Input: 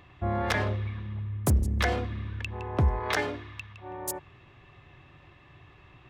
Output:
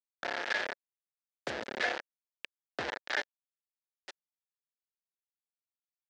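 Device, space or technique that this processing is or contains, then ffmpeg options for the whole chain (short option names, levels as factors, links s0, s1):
hand-held game console: -af "acrusher=bits=3:mix=0:aa=0.000001,highpass=430,equalizer=f=550:t=q:w=4:g=3,equalizer=f=1100:t=q:w=4:g=-7,equalizer=f=1700:t=q:w=4:g=8,lowpass=f=5100:w=0.5412,lowpass=f=5100:w=1.3066,volume=0.447"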